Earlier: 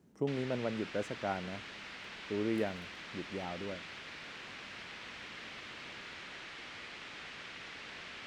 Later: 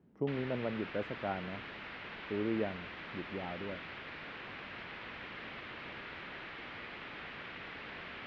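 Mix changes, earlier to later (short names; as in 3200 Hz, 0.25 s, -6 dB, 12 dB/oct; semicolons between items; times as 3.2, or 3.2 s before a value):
background +5.0 dB; master: add air absorption 360 m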